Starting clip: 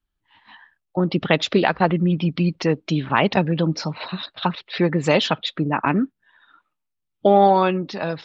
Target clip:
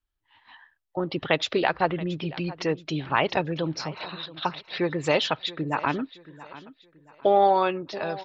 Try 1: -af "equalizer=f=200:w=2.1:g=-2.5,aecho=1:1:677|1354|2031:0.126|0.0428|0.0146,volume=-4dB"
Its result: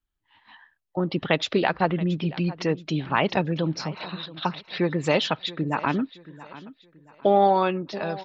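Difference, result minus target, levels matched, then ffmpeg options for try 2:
250 Hz band +3.0 dB
-af "equalizer=f=200:w=2.1:g=-11,aecho=1:1:677|1354|2031:0.126|0.0428|0.0146,volume=-4dB"

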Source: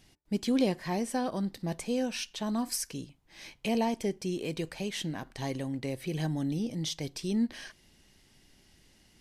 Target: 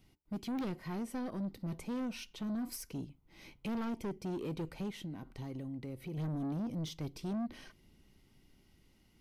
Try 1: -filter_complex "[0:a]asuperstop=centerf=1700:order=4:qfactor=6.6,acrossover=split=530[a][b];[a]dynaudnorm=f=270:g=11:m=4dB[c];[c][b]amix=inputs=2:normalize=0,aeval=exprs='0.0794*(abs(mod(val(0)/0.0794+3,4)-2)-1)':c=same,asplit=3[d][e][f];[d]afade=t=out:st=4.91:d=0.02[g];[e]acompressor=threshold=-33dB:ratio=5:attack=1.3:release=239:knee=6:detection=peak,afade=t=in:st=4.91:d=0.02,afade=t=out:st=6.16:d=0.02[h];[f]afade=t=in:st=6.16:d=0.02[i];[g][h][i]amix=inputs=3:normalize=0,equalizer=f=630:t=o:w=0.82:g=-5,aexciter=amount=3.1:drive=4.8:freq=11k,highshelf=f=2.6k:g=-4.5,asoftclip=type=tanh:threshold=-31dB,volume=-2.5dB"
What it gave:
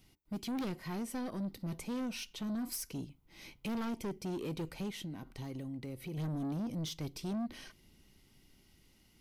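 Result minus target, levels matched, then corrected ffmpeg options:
4000 Hz band +3.5 dB
-filter_complex "[0:a]asuperstop=centerf=1700:order=4:qfactor=6.6,acrossover=split=530[a][b];[a]dynaudnorm=f=270:g=11:m=4dB[c];[c][b]amix=inputs=2:normalize=0,aeval=exprs='0.0794*(abs(mod(val(0)/0.0794+3,4)-2)-1)':c=same,asplit=3[d][e][f];[d]afade=t=out:st=4.91:d=0.02[g];[e]acompressor=threshold=-33dB:ratio=5:attack=1.3:release=239:knee=6:detection=peak,afade=t=in:st=4.91:d=0.02,afade=t=out:st=6.16:d=0.02[h];[f]afade=t=in:st=6.16:d=0.02[i];[g][h][i]amix=inputs=3:normalize=0,equalizer=f=630:t=o:w=0.82:g=-5,aexciter=amount=3.1:drive=4.8:freq=11k,highshelf=f=2.6k:g=-11.5,asoftclip=type=tanh:threshold=-31dB,volume=-2.5dB"

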